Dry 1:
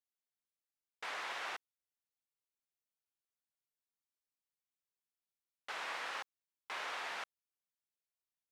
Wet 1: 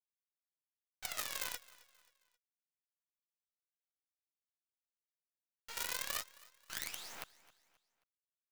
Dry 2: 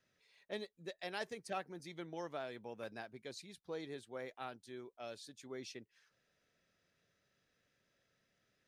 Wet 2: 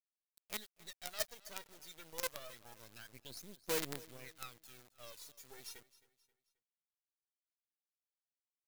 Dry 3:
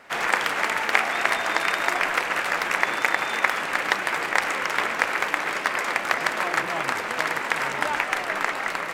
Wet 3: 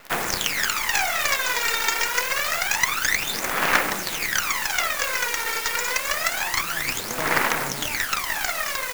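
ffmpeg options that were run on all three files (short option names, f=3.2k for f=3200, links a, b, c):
-af "aresample=16000,asoftclip=type=hard:threshold=-18.5dB,aresample=44100,bass=f=250:g=4,treble=f=4k:g=5,aphaser=in_gain=1:out_gain=1:delay=2.2:decay=0.78:speed=0.27:type=sinusoidal,acrusher=bits=6:dc=4:mix=0:aa=0.000001,aecho=1:1:266|532|798:0.106|0.0424|0.0169,crystalizer=i=6.5:c=0,aeval=exprs='2*(cos(1*acos(clip(val(0)/2,-1,1)))-cos(1*PI/2))+0.316*(cos(2*acos(clip(val(0)/2,-1,1)))-cos(2*PI/2))+0.0251*(cos(6*acos(clip(val(0)/2,-1,1)))-cos(6*PI/2))+0.141*(cos(7*acos(clip(val(0)/2,-1,1)))-cos(7*PI/2))+0.0794*(cos(8*acos(clip(val(0)/2,-1,1)))-cos(8*PI/2))':c=same,highshelf=f=2.9k:g=-8,volume=-4dB"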